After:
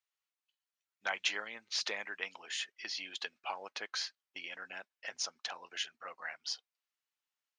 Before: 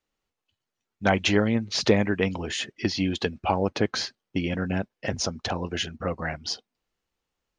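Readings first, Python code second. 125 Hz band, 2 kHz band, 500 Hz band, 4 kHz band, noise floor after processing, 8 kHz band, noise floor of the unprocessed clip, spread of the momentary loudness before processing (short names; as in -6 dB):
under -40 dB, -8.0 dB, -22.5 dB, -7.5 dB, under -85 dBFS, -7.5 dB, under -85 dBFS, 9 LU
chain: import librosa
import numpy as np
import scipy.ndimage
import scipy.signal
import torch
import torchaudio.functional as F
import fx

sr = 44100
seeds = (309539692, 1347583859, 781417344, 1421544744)

y = scipy.signal.sosfilt(scipy.signal.butter(2, 1200.0, 'highpass', fs=sr, output='sos'), x)
y = y * 10.0 ** (-7.5 / 20.0)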